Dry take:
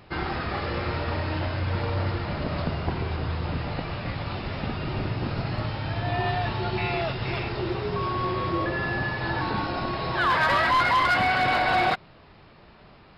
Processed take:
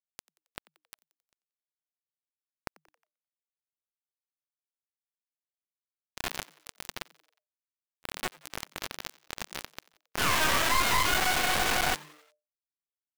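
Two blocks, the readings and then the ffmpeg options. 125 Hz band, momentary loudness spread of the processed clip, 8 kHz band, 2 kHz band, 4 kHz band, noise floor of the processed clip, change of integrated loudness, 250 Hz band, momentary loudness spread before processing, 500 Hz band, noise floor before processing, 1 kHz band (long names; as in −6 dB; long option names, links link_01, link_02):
−18.5 dB, 22 LU, can't be measured, −5.5 dB, −0.5 dB, below −85 dBFS, −1.5 dB, −13.0 dB, 10 LU, −11.0 dB, −52 dBFS, −8.5 dB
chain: -filter_complex "[0:a]lowpass=frequency=1600:poles=1,anlmdn=10,highpass=frequency=1200:poles=1,aemphasis=mode=reproduction:type=75kf,acompressor=mode=upward:threshold=-45dB:ratio=2.5,flanger=delay=19:depth=5.4:speed=2.3,crystalizer=i=3.5:c=0,acrusher=bits=4:mix=0:aa=0.000001,aeval=exprs='0.133*(cos(1*acos(clip(val(0)/0.133,-1,1)))-cos(1*PI/2))+0.0473*(cos(8*acos(clip(val(0)/0.133,-1,1)))-cos(8*PI/2))':channel_layout=same,asplit=5[link_01][link_02][link_03][link_04][link_05];[link_02]adelay=90,afreqshift=150,volume=-22.5dB[link_06];[link_03]adelay=180,afreqshift=300,volume=-27.7dB[link_07];[link_04]adelay=270,afreqshift=450,volume=-32.9dB[link_08];[link_05]adelay=360,afreqshift=600,volume=-38.1dB[link_09];[link_01][link_06][link_07][link_08][link_09]amix=inputs=5:normalize=0"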